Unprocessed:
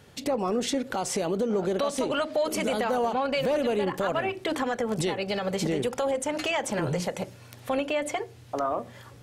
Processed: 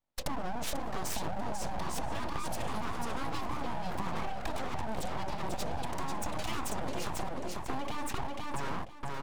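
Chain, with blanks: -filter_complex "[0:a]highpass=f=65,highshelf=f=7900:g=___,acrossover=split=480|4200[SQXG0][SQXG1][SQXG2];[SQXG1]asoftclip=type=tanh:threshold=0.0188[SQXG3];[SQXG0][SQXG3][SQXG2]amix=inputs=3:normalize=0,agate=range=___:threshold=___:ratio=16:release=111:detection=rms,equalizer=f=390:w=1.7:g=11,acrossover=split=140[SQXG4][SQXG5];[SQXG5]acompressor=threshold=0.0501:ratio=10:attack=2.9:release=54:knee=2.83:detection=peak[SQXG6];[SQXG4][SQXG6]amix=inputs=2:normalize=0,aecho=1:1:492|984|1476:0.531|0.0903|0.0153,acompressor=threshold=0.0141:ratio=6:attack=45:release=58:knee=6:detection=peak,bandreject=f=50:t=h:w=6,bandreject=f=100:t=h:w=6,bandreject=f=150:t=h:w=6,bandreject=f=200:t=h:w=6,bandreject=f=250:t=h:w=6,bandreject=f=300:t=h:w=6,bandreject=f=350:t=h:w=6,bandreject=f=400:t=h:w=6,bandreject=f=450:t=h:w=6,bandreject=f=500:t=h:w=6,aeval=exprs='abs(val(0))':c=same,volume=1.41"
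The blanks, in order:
-3, 0.0112, 0.0158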